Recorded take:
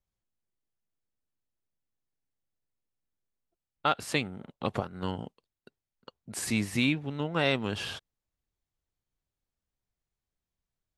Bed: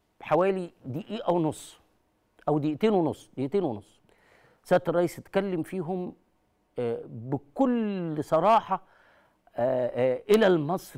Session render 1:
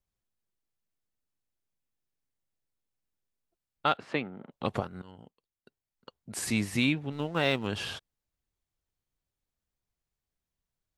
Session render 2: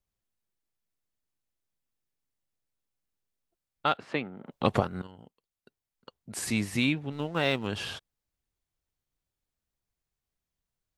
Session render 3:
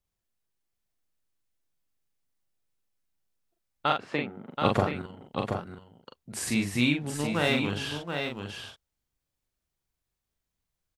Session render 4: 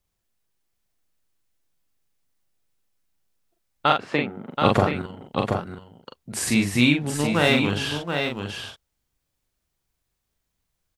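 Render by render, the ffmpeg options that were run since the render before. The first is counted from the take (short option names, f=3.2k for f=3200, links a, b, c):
-filter_complex "[0:a]asettb=1/sr,asplit=3[a][b][c];[a]atrim=end=3.974[d];[b]atrim=start=3.97:end=4.52,asetpts=PTS-STARTPTS,afade=t=in:d=0.004:c=qsin,afade=t=out:st=0.546:d=0.004:c=qsin,highpass=180,lowpass=2.2k[e];[c]atrim=start=4.516[f];[d][e]acrossfade=d=0.004:c1=hsin:c2=qsin[g];[g][f]acrossfade=d=0.004:c1=qsin:c2=hsin,asettb=1/sr,asplit=3[h][i][j];[h]atrim=end=7.124[k];[i]atrim=start=7.12:end=7.67,asetpts=PTS-STARTPTS,afade=t=in:d=0.004:c=qsin,afade=t=out:st=0.546:d=0.004:c=qsin,aeval=exprs='sgn(val(0))*max(abs(val(0))-0.00398,0)':c=same[l];[j]atrim=start=7.666[m];[k][l]acrossfade=d=0.004:c1=hsin:c2=qsin[n];[n][m]acrossfade=d=0.004:c1=qsin:c2=hsin,asplit=2[o][p];[o]atrim=end=5.02,asetpts=PTS-STARTPTS,afade=t=out:st=5.016:d=0.004:c=hsin:silence=0.0749894[q];[p]atrim=start=5.02,asetpts=PTS-STARTPTS,afade=t=in:d=1.18:silence=0.0749894[r];[q][r]concat=n=2:v=0:a=1"
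-filter_complex "[0:a]asettb=1/sr,asplit=3[a][b][c];[a]atrim=end=4.464[d];[b]atrim=start=4.46:end=5.07,asetpts=PTS-STARTPTS,afade=t=in:d=0.004:c=qsin,afade=t=out:st=0.606:d=0.004:c=qsin,acontrast=61[e];[c]atrim=start=5.066[f];[d][e]acrossfade=d=0.004:c1=hsin:c2=qsin[g];[g][f]acrossfade=d=0.004:c1=qsin:c2=hsin"
-filter_complex "[0:a]asplit=2[a][b];[b]adelay=41,volume=-4dB[c];[a][c]amix=inputs=2:normalize=0,asplit=2[d][e];[e]aecho=0:1:728:0.501[f];[d][f]amix=inputs=2:normalize=0"
-af "volume=6.5dB,alimiter=limit=-3dB:level=0:latency=1"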